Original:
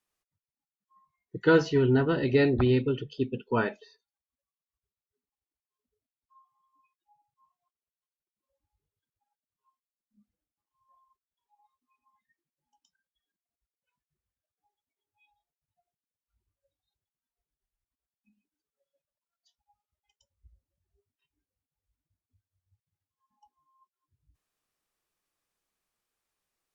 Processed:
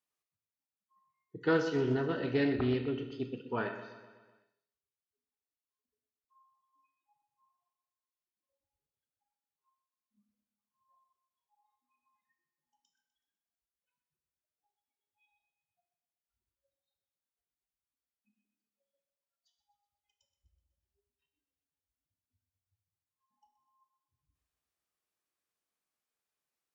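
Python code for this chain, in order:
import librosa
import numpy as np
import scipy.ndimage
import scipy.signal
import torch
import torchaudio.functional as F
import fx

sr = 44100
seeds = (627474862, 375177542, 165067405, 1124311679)

y = fx.highpass(x, sr, hz=120.0, slope=6)
y = fx.echo_feedback(y, sr, ms=125, feedback_pct=57, wet_db=-13.0)
y = fx.rev_schroeder(y, sr, rt60_s=0.64, comb_ms=25, drr_db=7.0)
y = fx.doppler_dist(y, sr, depth_ms=0.15)
y = y * 10.0 ** (-7.5 / 20.0)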